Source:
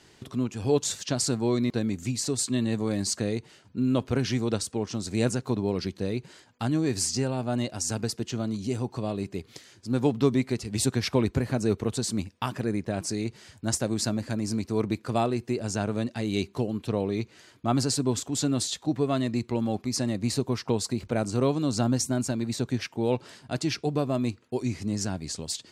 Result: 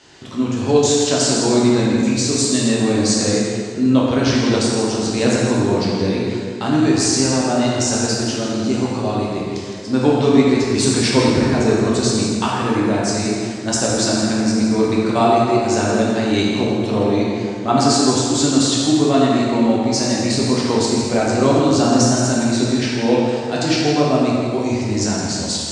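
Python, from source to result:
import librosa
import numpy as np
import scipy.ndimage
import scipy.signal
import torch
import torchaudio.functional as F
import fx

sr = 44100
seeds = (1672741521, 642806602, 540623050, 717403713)

y = scipy.signal.sosfilt(scipy.signal.butter(4, 7900.0, 'lowpass', fs=sr, output='sos'), x)
y = fx.low_shelf(y, sr, hz=210.0, db=-8.5)
y = y + 10.0 ** (-8.5 / 20.0) * np.pad(y, (int(164 * sr / 1000.0), 0))[:len(y)]
y = fx.rev_plate(y, sr, seeds[0], rt60_s=2.2, hf_ratio=0.65, predelay_ms=0, drr_db=-5.0)
y = y * 10.0 ** (7.0 / 20.0)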